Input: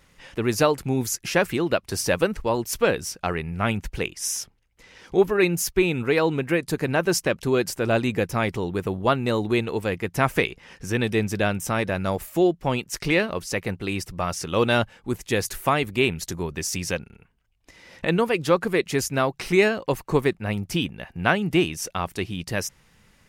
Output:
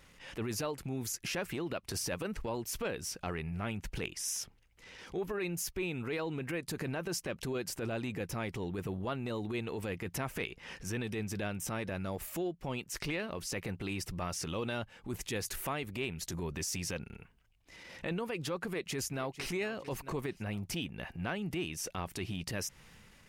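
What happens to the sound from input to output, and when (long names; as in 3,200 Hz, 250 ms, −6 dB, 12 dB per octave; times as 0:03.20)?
0:18.67–0:19.51: delay throw 450 ms, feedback 40%, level −17 dB
whole clip: transient designer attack −10 dB, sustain +3 dB; parametric band 2,700 Hz +2 dB; downward compressor 6 to 1, threshold −32 dBFS; level −2 dB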